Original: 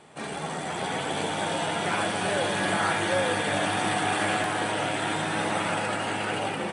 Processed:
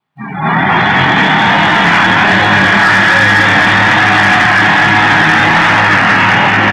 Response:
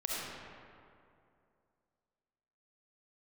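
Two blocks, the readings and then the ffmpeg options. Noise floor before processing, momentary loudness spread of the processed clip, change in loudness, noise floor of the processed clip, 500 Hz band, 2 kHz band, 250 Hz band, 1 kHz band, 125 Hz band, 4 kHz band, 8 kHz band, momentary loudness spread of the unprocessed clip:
−34 dBFS, 2 LU, +20.0 dB, −22 dBFS, +10.5 dB, +23.5 dB, +17.0 dB, +18.5 dB, +19.5 dB, +17.0 dB, +6.0 dB, 5 LU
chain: -af "aecho=1:1:250|575|997.5|1547|2261:0.631|0.398|0.251|0.158|0.1,flanger=delay=19:depth=7.7:speed=1.2,adynamicequalizer=threshold=0.00447:dfrequency=1800:dqfactor=5.3:tfrequency=1800:tqfactor=5.3:attack=5:release=100:ratio=0.375:range=3.5:mode=boostabove:tftype=bell,acrusher=bits=2:mode=log:mix=0:aa=0.000001,dynaudnorm=framelen=130:gausssize=7:maxgain=9dB,equalizer=frequency=125:width_type=o:width=1:gain=10,equalizer=frequency=250:width_type=o:width=1:gain=4,equalizer=frequency=500:width_type=o:width=1:gain=-8,equalizer=frequency=1000:width_type=o:width=1:gain=8,equalizer=frequency=2000:width_type=o:width=1:gain=6,equalizer=frequency=4000:width_type=o:width=1:gain=5,equalizer=frequency=8000:width_type=o:width=1:gain=-9,afftdn=noise_reduction=34:noise_floor=-25,bandreject=frequency=50:width_type=h:width=6,bandreject=frequency=100:width_type=h:width=6,bandreject=frequency=150:width_type=h:width=6,acontrast=80,alimiter=level_in=6dB:limit=-1dB:release=50:level=0:latency=1,volume=-1dB"

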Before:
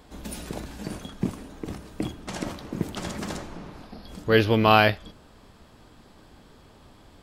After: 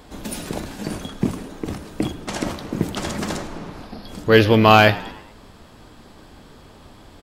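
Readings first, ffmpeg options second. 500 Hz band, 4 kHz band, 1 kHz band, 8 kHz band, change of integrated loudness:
+6.0 dB, +5.5 dB, +5.5 dB, +7.5 dB, +5.5 dB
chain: -filter_complex "[0:a]bandreject=frequency=60:width_type=h:width=6,bandreject=frequency=120:width_type=h:width=6,bandreject=frequency=180:width_type=h:width=6,aeval=exprs='0.794*sin(PI/2*1.41*val(0)/0.794)':channel_layout=same,asplit=5[link_01][link_02][link_03][link_04][link_05];[link_02]adelay=106,afreqshift=76,volume=-19.5dB[link_06];[link_03]adelay=212,afreqshift=152,volume=-25.5dB[link_07];[link_04]adelay=318,afreqshift=228,volume=-31.5dB[link_08];[link_05]adelay=424,afreqshift=304,volume=-37.6dB[link_09];[link_01][link_06][link_07][link_08][link_09]amix=inputs=5:normalize=0"

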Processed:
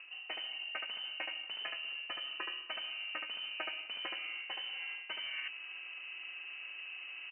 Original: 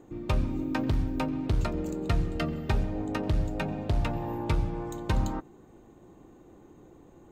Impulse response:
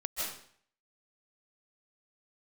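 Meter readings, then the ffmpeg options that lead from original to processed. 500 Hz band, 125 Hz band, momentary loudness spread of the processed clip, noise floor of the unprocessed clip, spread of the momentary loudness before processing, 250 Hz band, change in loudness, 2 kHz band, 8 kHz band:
−19.0 dB, below −40 dB, 5 LU, −54 dBFS, 4 LU, −32.0 dB, −9.0 dB, +3.0 dB, below −30 dB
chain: -filter_complex "[0:a]aeval=exprs='val(0)+0.00282*sin(2*PI*510*n/s)':channel_layout=same,highpass=57,asplit=2[link_01][link_02];[link_02]aecho=0:1:74:0.596[link_03];[link_01][link_03]amix=inputs=2:normalize=0,lowpass=frequency=2600:width_type=q:width=0.5098,lowpass=frequency=2600:width_type=q:width=0.6013,lowpass=frequency=2600:width_type=q:width=0.9,lowpass=frequency=2600:width_type=q:width=2.563,afreqshift=-3100,areverse,acompressor=threshold=-45dB:ratio=5,areverse,acrossover=split=170 2100:gain=0.158 1 0.0794[link_04][link_05][link_06];[link_04][link_05][link_06]amix=inputs=3:normalize=0,volume=13.5dB"

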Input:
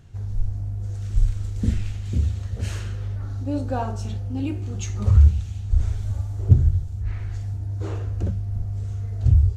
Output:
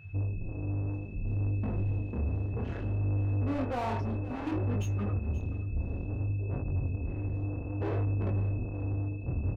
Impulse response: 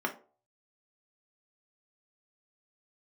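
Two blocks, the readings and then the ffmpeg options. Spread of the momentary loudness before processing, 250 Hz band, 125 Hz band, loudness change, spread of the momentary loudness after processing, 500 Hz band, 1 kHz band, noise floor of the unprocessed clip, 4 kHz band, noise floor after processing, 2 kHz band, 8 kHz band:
12 LU, −3.5 dB, −8.5 dB, −8.0 dB, 5 LU, −1.0 dB, −2.5 dB, −31 dBFS, below −10 dB, −38 dBFS, −1.0 dB, can't be measured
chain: -filter_complex "[0:a]bandreject=frequency=186.5:width_type=h:width=4,bandreject=frequency=373:width_type=h:width=4,bandreject=frequency=559.5:width_type=h:width=4,bandreject=frequency=746:width_type=h:width=4,bandreject=frequency=932.5:width_type=h:width=4,bandreject=frequency=1119:width_type=h:width=4,bandreject=frequency=1305.5:width_type=h:width=4,afftdn=noise_reduction=28:noise_floor=-31,lowpass=4800,adynamicequalizer=threshold=0.00158:dfrequency=930:dqfactor=3:tfrequency=930:tqfactor=3:attack=5:release=100:ratio=0.375:range=2:mode=boostabove:tftype=bell,areverse,acompressor=threshold=-27dB:ratio=20,areverse,asplit=2[link_01][link_02];[link_02]highpass=frequency=720:poles=1,volume=36dB,asoftclip=type=tanh:threshold=-22.5dB[link_03];[link_01][link_03]amix=inputs=2:normalize=0,lowpass=frequency=1200:poles=1,volume=-6dB,aeval=exprs='val(0)+0.00251*sin(2*PI*2600*n/s)':channel_layout=same,flanger=delay=19.5:depth=7.7:speed=0.61,asplit=2[link_04][link_05];[link_05]aecho=0:1:530:0.15[link_06];[link_04][link_06]amix=inputs=2:normalize=0"

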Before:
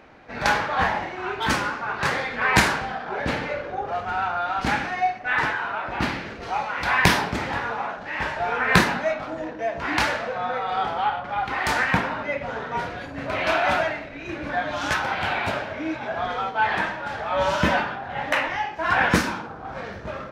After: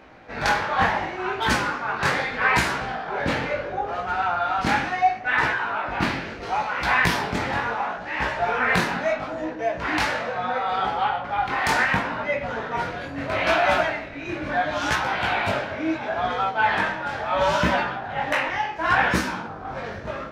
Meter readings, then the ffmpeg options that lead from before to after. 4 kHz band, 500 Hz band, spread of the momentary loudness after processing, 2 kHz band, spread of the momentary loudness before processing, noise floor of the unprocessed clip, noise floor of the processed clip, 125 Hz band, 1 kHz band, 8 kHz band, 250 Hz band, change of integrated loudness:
−0.5 dB, +1.0 dB, 8 LU, +0.5 dB, 10 LU, −37 dBFS, −35 dBFS, −1.0 dB, +1.0 dB, −2.0 dB, 0.0 dB, +0.5 dB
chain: -af "alimiter=limit=-10dB:level=0:latency=1:release=308,flanger=delay=15.5:depth=7.1:speed=0.73,volume=4.5dB"

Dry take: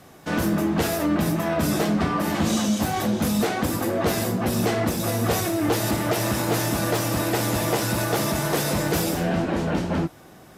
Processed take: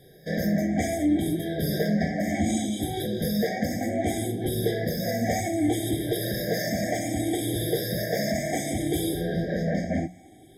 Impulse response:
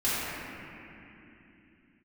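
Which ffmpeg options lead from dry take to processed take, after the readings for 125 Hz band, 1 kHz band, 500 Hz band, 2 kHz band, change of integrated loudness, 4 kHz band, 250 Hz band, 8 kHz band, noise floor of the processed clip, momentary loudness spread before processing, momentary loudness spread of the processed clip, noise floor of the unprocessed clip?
−4.0 dB, −7.5 dB, −2.5 dB, −5.0 dB, −3.5 dB, −5.0 dB, −2.5 dB, −6.0 dB, −51 dBFS, 2 LU, 3 LU, −48 dBFS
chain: -af "afftfilt=real='re*pow(10,13/40*sin(2*PI*(0.62*log(max(b,1)*sr/1024/100)/log(2)-(0.65)*(pts-256)/sr)))':imag='im*pow(10,13/40*sin(2*PI*(0.62*log(max(b,1)*sr/1024/100)/log(2)-(0.65)*(pts-256)/sr)))':win_size=1024:overlap=0.75,bandreject=frequency=60:width_type=h:width=6,bandreject=frequency=120:width_type=h:width=6,bandreject=frequency=180:width_type=h:width=6,afftfilt=real='re*eq(mod(floor(b*sr/1024/780),2),0)':imag='im*eq(mod(floor(b*sr/1024/780),2),0)':win_size=1024:overlap=0.75,volume=-4.5dB"

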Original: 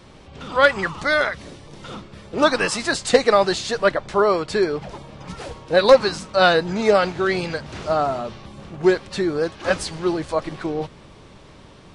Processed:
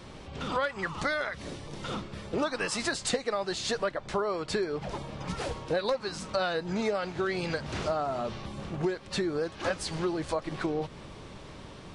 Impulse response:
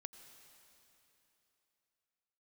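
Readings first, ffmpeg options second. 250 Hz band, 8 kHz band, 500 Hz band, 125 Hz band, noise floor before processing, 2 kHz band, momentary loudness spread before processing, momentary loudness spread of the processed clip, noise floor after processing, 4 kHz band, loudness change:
−8.5 dB, −6.0 dB, −12.5 dB, −5.5 dB, −46 dBFS, −12.0 dB, 20 LU, 10 LU, −47 dBFS, −9.5 dB, −12.0 dB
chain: -af "acompressor=threshold=-27dB:ratio=8"

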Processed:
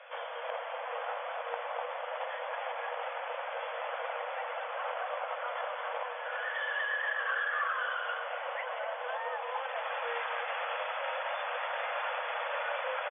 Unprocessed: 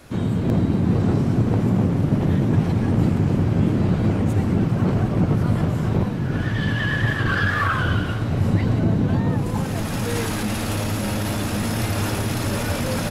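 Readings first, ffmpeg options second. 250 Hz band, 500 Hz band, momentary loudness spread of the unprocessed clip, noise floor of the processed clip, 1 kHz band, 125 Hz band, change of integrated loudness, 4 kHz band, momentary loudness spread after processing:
below −40 dB, −9.0 dB, 5 LU, −40 dBFS, −3.5 dB, below −40 dB, −14.0 dB, −9.5 dB, 6 LU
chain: -filter_complex "[0:a]afftfilt=real='re*between(b*sr/4096,470,3500)':imag='im*between(b*sr/4096,470,3500)':win_size=4096:overlap=0.75,acrossover=split=660|2100[link_01][link_02][link_03];[link_01]acompressor=threshold=-48dB:ratio=4[link_04];[link_02]acompressor=threshold=-33dB:ratio=4[link_05];[link_03]acompressor=threshold=-49dB:ratio=4[link_06];[link_04][link_05][link_06]amix=inputs=3:normalize=0,aecho=1:1:247:0.299"

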